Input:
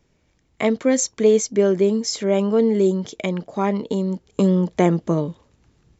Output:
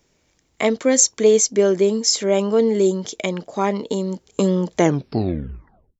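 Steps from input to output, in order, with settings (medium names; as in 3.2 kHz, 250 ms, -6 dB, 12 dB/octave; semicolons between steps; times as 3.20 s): tape stop on the ending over 1.22 s; tone controls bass -6 dB, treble +7 dB; trim +2 dB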